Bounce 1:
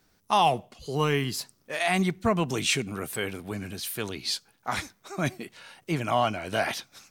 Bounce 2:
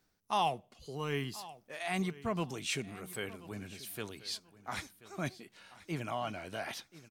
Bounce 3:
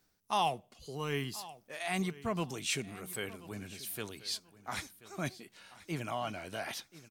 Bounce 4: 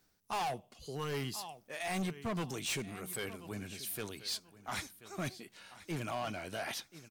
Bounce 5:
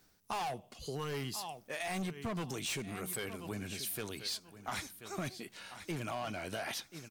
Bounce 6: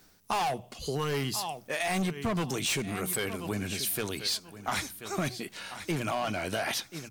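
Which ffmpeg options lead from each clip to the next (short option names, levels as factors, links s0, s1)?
-af "tremolo=f=2.5:d=0.44,aecho=1:1:1033|2066:0.126|0.0302,volume=0.376"
-af "highshelf=f=5100:g=5"
-af "asoftclip=type=hard:threshold=0.0211,volume=1.12"
-af "acompressor=threshold=0.00891:ratio=6,volume=1.78"
-af "bandreject=f=60:t=h:w=6,bandreject=f=120:t=h:w=6,volume=2.51"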